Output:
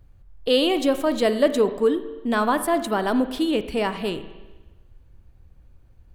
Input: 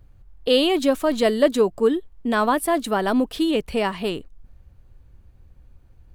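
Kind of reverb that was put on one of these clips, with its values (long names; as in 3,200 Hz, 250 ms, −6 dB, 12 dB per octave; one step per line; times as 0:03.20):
spring reverb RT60 1.2 s, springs 38/51 ms, chirp 35 ms, DRR 10.5 dB
level −1.5 dB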